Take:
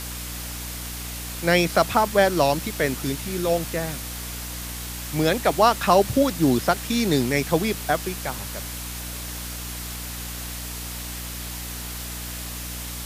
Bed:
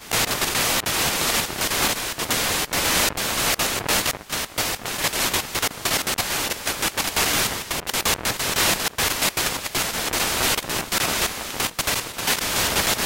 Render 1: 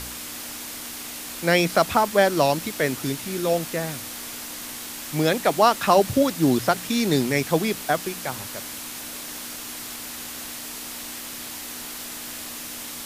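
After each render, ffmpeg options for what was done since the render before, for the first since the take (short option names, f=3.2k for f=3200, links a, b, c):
-af "bandreject=f=60:t=h:w=4,bandreject=f=120:t=h:w=4,bandreject=f=180:t=h:w=4"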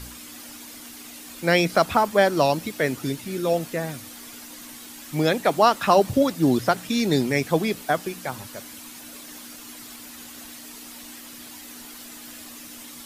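-af "afftdn=nr=9:nf=-36"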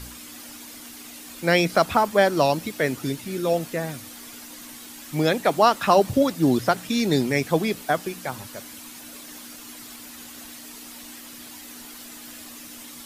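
-af anull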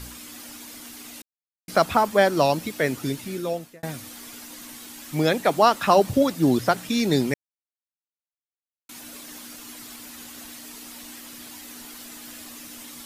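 -filter_complex "[0:a]asplit=6[a][b][c][d][e][f];[a]atrim=end=1.22,asetpts=PTS-STARTPTS,afade=t=out:st=1.216:d=0.004:c=hsin[g];[b]atrim=start=1.22:end=1.68,asetpts=PTS-STARTPTS,volume=0[h];[c]atrim=start=1.68:end=3.83,asetpts=PTS-STARTPTS,afade=t=in:d=0.004:c=hsin,afade=t=out:st=1.56:d=0.59[i];[d]atrim=start=3.83:end=7.34,asetpts=PTS-STARTPTS,afade=t=in:d=0.004:c=hsin,afade=t=out:st=3.506:d=0.004:c=hsin[j];[e]atrim=start=7.34:end=8.89,asetpts=PTS-STARTPTS,volume=0[k];[f]atrim=start=8.89,asetpts=PTS-STARTPTS,afade=t=in:d=0.004:c=hsin[l];[g][h][i][j][k][l]concat=n=6:v=0:a=1"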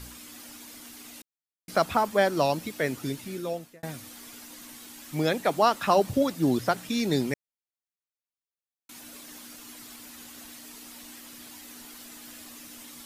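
-af "volume=-4.5dB"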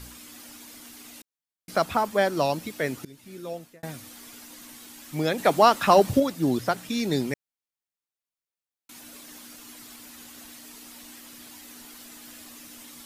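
-filter_complex "[0:a]asettb=1/sr,asplit=3[a][b][c];[a]atrim=end=5.384[d];[b]atrim=start=5.38:end=6.2,asetpts=PTS-STARTPTS,afade=t=in:d=0.004:c=qsin,afade=t=out:st=0.816:d=0.004:c=qsin,acontrast=23[e];[c]atrim=start=6.196[f];[d][e]acrossfade=d=0.004:c1=hsin:c2=qsin[g];[g][f]acrossfade=d=0.004:c1=qsin:c2=hsin,asplit=2[h][i];[h]atrim=end=3.05,asetpts=PTS-STARTPTS,afade=t=out:st=3.046:d=0.004:c=hsin:silence=0.0794328[j];[i]atrim=start=3.05,asetpts=PTS-STARTPTS,afade=t=in:d=0.67:silence=0.0794328[k];[j][k]concat=n=2:v=0:a=1"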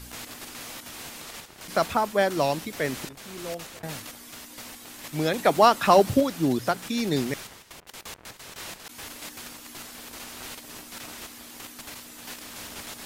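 -filter_complex "[1:a]volume=-19.5dB[a];[0:a][a]amix=inputs=2:normalize=0"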